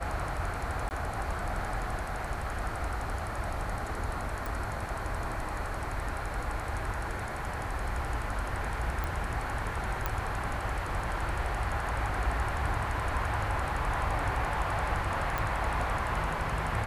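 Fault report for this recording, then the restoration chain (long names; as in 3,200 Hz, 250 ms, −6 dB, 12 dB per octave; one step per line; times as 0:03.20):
0:00.89–0:00.91: drop-out 19 ms
0:04.46: click
0:09.04: click
0:10.06: click −15 dBFS
0:15.38: click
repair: click removal
repair the gap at 0:00.89, 19 ms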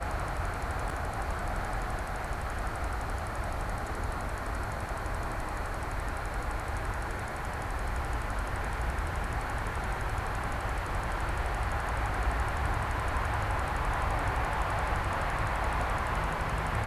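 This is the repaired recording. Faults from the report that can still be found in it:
none of them is left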